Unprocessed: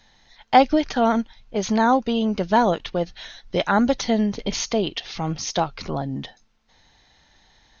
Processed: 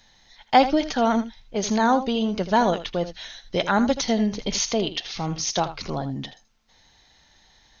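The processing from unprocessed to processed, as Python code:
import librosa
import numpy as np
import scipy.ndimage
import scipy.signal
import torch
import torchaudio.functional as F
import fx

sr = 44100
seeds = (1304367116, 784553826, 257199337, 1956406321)

p1 = fx.high_shelf(x, sr, hz=4600.0, db=7.5)
p2 = p1 + fx.echo_single(p1, sr, ms=80, db=-12.5, dry=0)
y = p2 * 10.0 ** (-2.0 / 20.0)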